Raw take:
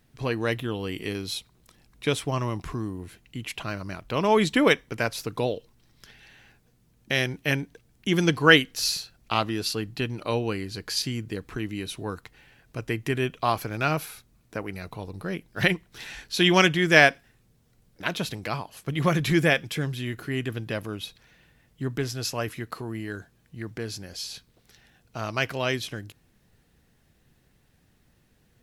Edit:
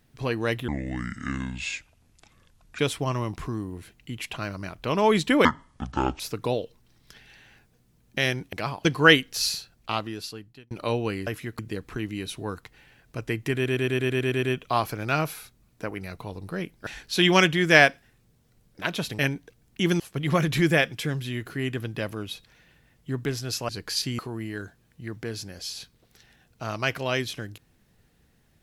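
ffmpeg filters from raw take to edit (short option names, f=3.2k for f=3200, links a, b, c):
-filter_complex "[0:a]asplit=23[a][b][c][d][e][f][g][h][i][j][k][l][m][n][o][p][q][r][s][t][u][v][w];[a]atrim=end=0.684[x];[b]atrim=start=0.68:end=2.05,asetpts=PTS-STARTPTS,asetrate=28665,aresample=44100,atrim=end_sample=92949,asetpts=PTS-STARTPTS[y];[c]atrim=start=2.046:end=4.714[z];[d]atrim=start=4.71:end=5.13,asetpts=PTS-STARTPTS,asetrate=24696,aresample=44100[aa];[e]atrim=start=5.126:end=7.462[ab];[f]atrim=start=18.398:end=18.722[ac];[g]atrim=start=8.268:end=10.13,asetpts=PTS-STARTPTS,afade=t=out:st=0.722:d=1.14[ad];[h]atrim=start=10.13:end=10.692,asetpts=PTS-STARTPTS,afade=t=in:d=0.004:c=hsin[ae];[i]atrim=start=22.408:end=22.732[af];[j]atrim=start=11.188:end=13.262[ag];[k]atrim=start=13.148:end=13.262[ah];[l]atrim=start=13.148:end=13.262[ai];[m]atrim=start=13.148:end=13.262[aj];[n]atrim=start=13.148:end=13.262[ak];[o]atrim=start=13.148:end=13.262[al];[p]atrim=start=13.148:end=13.262[am];[q]atrim=start=13.148:end=13.262[an];[r]atrim=start=13.148:end=15.592[ao];[s]atrim=start=16.078:end=18.402[ap];[t]atrim=start=7.458:end=8.272[aq];[u]atrim=start=18.718:end=22.412[ar];[v]atrim=start=10.688:end=11.192[as];[w]atrim=start=22.728[at];[x][y]acrossfade=d=0.004:c1=hsin:c2=hsin[au];[au][z]acrossfade=d=0.004:c1=hsin:c2=hsin[av];[av][aa]acrossfade=d=0.004:c1=hsin:c2=hsin[aw];[aw][ab]acrossfade=d=0.004:c1=hsin:c2=hsin[ax];[ax][ac]acrossfade=d=0.004:c1=hsin:c2=hsin[ay];[ad][ae]concat=n=2:v=0:a=1[az];[ay][az]acrossfade=d=0.004:c1=hsin:c2=hsin[ba];[ba][af]acrossfade=d=0.004:c1=hsin:c2=hsin[bb];[bb][ag]acrossfade=d=0.004:c1=hsin:c2=hsin[bc];[bc][ah]acrossfade=d=0.004:c1=hsin:c2=hsin[bd];[bd][ai]acrossfade=d=0.004:c1=hsin:c2=hsin[be];[be][aj]acrossfade=d=0.004:c1=hsin:c2=hsin[bf];[bf][ak]acrossfade=d=0.004:c1=hsin:c2=hsin[bg];[bg][al]acrossfade=d=0.004:c1=hsin:c2=hsin[bh];[bh][am]acrossfade=d=0.004:c1=hsin:c2=hsin[bi];[bi][an]acrossfade=d=0.004:c1=hsin:c2=hsin[bj];[bj][ao]acrossfade=d=0.004:c1=hsin:c2=hsin[bk];[bk][ap]acrossfade=d=0.004:c1=hsin:c2=hsin[bl];[bl][aq]acrossfade=d=0.004:c1=hsin:c2=hsin[bm];[bm][ar]acrossfade=d=0.004:c1=hsin:c2=hsin[bn];[bn][as]acrossfade=d=0.004:c1=hsin:c2=hsin[bo];[bo][at]acrossfade=d=0.004:c1=hsin:c2=hsin"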